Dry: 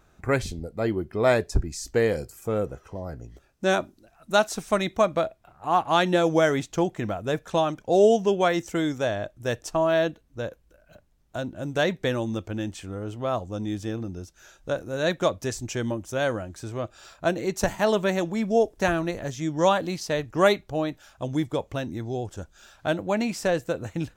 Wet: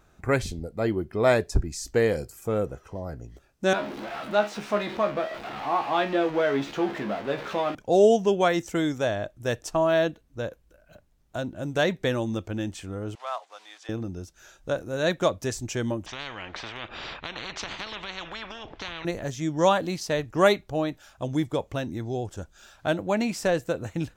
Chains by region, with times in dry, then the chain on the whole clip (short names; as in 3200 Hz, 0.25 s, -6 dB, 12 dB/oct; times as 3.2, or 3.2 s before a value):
3.73–7.75 zero-crossing step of -22.5 dBFS + three-band isolator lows -20 dB, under 170 Hz, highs -22 dB, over 4000 Hz + resonator 69 Hz, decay 0.19 s, mix 90%
13.15–13.89 block floating point 5-bit + HPF 800 Hz 24 dB/oct + air absorption 96 m
16.06–19.05 LPF 3100 Hz 24 dB/oct + compressor, threshold -25 dBFS + spectral compressor 10:1
whole clip: dry